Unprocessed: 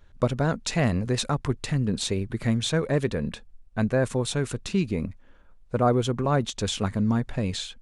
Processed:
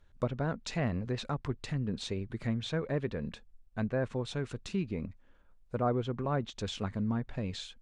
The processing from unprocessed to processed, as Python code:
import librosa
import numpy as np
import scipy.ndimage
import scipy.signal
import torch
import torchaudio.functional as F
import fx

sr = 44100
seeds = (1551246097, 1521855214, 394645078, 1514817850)

y = fx.env_lowpass_down(x, sr, base_hz=2800.0, full_db=-20.0)
y = y * librosa.db_to_amplitude(-8.5)